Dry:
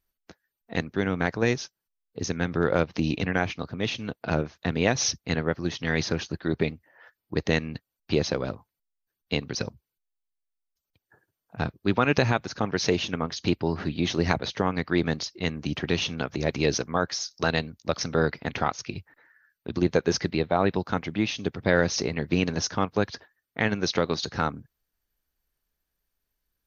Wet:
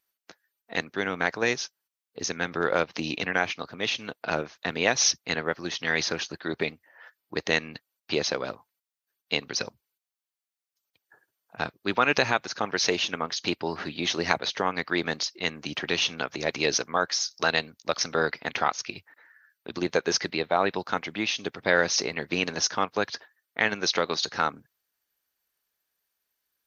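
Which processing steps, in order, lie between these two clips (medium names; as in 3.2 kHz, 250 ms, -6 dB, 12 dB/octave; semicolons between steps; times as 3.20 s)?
high-pass 810 Hz 6 dB/octave; trim +4 dB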